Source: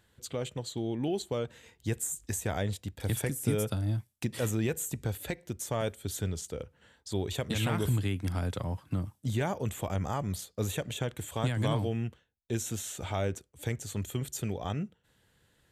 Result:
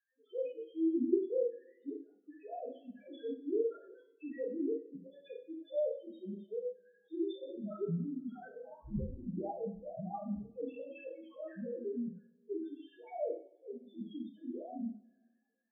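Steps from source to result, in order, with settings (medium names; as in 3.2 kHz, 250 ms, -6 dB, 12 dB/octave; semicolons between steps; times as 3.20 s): formants replaced by sine waves; 8.83–10.48 s: wind noise 510 Hz -36 dBFS; loudest bins only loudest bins 1; two-slope reverb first 0.45 s, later 1.6 s, from -26 dB, DRR -4.5 dB; trim -6 dB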